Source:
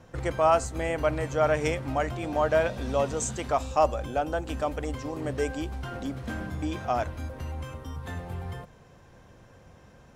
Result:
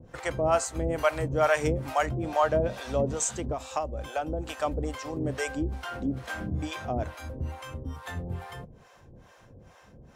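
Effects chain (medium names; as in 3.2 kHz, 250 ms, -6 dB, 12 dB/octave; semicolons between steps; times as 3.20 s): 0.84–2.06 s: treble shelf 6.6 kHz +8 dB; 3.06–4.53 s: compression 12:1, threshold -26 dBFS, peak gain reduction 10.5 dB; harmonic tremolo 2.3 Hz, depth 100%, crossover 550 Hz; trim +5 dB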